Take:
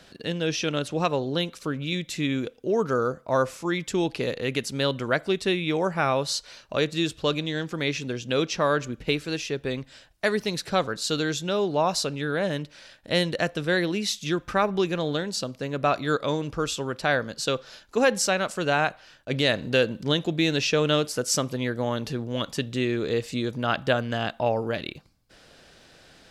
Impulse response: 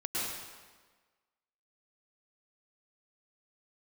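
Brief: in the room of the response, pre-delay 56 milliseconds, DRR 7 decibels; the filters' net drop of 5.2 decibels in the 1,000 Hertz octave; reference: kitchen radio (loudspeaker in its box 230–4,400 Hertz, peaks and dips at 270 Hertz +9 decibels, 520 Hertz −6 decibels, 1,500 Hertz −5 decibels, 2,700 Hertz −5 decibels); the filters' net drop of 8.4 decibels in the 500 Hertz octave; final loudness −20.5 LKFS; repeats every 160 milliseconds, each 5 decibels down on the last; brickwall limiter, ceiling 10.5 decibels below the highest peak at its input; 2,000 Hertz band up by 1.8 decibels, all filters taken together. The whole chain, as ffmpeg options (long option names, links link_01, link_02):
-filter_complex "[0:a]equalizer=frequency=500:width_type=o:gain=-7,equalizer=frequency=1000:width_type=o:gain=-6,equalizer=frequency=2000:width_type=o:gain=9,alimiter=limit=-15.5dB:level=0:latency=1,aecho=1:1:160|320|480|640|800|960|1120:0.562|0.315|0.176|0.0988|0.0553|0.031|0.0173,asplit=2[link_01][link_02];[1:a]atrim=start_sample=2205,adelay=56[link_03];[link_02][link_03]afir=irnorm=-1:irlink=0,volume=-13dB[link_04];[link_01][link_04]amix=inputs=2:normalize=0,highpass=230,equalizer=frequency=270:width_type=q:width=4:gain=9,equalizer=frequency=520:width_type=q:width=4:gain=-6,equalizer=frequency=1500:width_type=q:width=4:gain=-5,equalizer=frequency=2700:width_type=q:width=4:gain=-5,lowpass=frequency=4400:width=0.5412,lowpass=frequency=4400:width=1.3066,volume=7.5dB"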